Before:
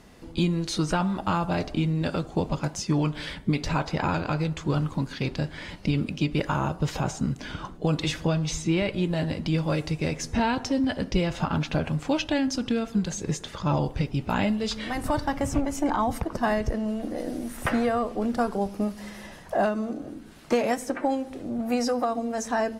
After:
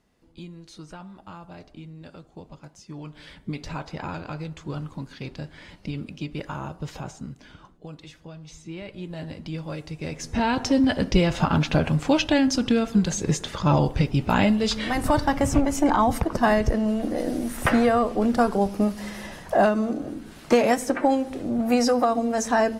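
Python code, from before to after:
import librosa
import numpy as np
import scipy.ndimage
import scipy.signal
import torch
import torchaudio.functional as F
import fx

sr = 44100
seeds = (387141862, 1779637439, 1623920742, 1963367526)

y = fx.gain(x, sr, db=fx.line((2.81, -16.5), (3.51, -7.0), (6.95, -7.0), (8.18, -18.5), (9.26, -7.5), (9.89, -7.5), (10.69, 5.0)))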